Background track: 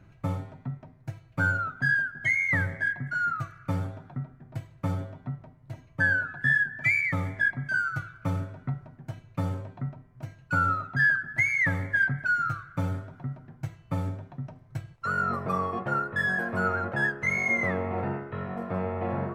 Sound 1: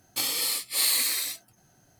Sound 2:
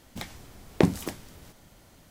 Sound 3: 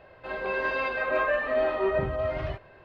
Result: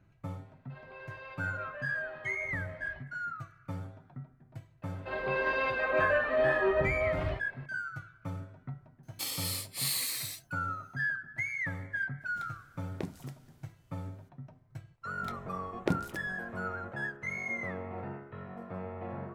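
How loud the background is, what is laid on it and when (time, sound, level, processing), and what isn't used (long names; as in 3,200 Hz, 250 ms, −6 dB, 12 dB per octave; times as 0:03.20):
background track −10 dB
0:00.46: mix in 3 −17.5 dB + parametric band 200 Hz −14 dB 1.1 octaves
0:04.82: mix in 3 −2 dB
0:09.03: mix in 1 −8.5 dB
0:12.20: mix in 2 −17 dB, fades 0.02 s
0:15.07: mix in 2 −9 dB + adaptive Wiener filter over 9 samples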